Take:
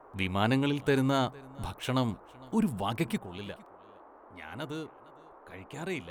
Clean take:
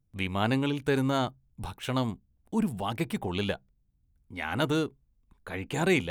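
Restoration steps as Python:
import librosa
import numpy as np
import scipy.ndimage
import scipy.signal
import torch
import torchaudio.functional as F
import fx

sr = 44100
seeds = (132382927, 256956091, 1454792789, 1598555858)

y = fx.fix_interpolate(x, sr, at_s=(2.51, 3.66, 5.51), length_ms=2.7)
y = fx.noise_reduce(y, sr, print_start_s=3.76, print_end_s=4.26, reduce_db=15.0)
y = fx.fix_echo_inverse(y, sr, delay_ms=458, level_db=-23.5)
y = fx.gain(y, sr, db=fx.steps((0.0, 0.0), (3.18, 11.0)))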